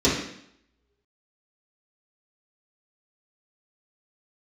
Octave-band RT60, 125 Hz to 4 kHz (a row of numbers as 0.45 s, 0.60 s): 0.70 s, 0.75 s, 0.70 s, 0.70 s, 0.70 s, 0.70 s